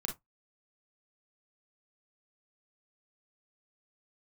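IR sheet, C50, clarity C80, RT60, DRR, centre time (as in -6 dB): 9.5 dB, 25.0 dB, 0.15 s, 2.5 dB, 18 ms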